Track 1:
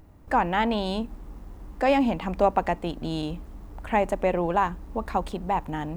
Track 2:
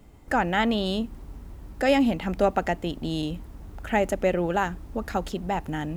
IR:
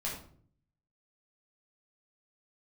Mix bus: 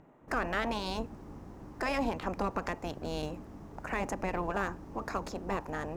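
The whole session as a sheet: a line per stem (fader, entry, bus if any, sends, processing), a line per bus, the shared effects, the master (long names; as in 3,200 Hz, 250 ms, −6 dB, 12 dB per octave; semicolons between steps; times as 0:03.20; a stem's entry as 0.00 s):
+1.0 dB, 0.00 s, no send, adaptive Wiener filter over 9 samples; gate on every frequency bin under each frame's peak −10 dB weak
−13.0 dB, 0.00 s, no send, noise gate with hold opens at −35 dBFS; parametric band 5,700 Hz +10.5 dB 1 octave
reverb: not used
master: brickwall limiter −21 dBFS, peak gain reduction 8.5 dB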